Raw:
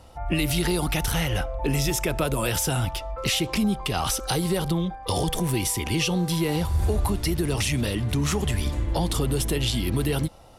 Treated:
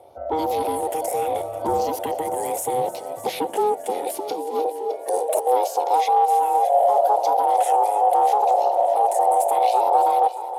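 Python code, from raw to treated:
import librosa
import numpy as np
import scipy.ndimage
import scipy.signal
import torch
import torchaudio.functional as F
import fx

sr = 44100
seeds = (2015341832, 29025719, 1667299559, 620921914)

y = fx.rattle_buzz(x, sr, strikes_db=-23.0, level_db=-28.0)
y = fx.graphic_eq(y, sr, hz=(125, 250, 500, 1000, 2000, 4000, 8000), db=(6, 11, -7, -8, -3, -6, 6))
y = fx.over_compress(y, sr, threshold_db=-24.0, ratio=-0.5, at=(4.31, 5.47))
y = fx.phaser_stages(y, sr, stages=4, low_hz=620.0, high_hz=1900.0, hz=0.73, feedback_pct=25)
y = 10.0 ** (-14.5 / 20.0) * np.tanh(y / 10.0 ** (-14.5 / 20.0))
y = y * np.sin(2.0 * np.pi * 630.0 * np.arange(len(y)) / sr)
y = fx.echo_feedback(y, sr, ms=612, feedback_pct=56, wet_db=-16.0)
y = fx.filter_sweep_highpass(y, sr, from_hz=83.0, to_hz=700.0, start_s=1.95, end_s=5.94, q=2.7)
y = fx.echo_thinned(y, sr, ms=305, feedback_pct=60, hz=420.0, wet_db=-16.0)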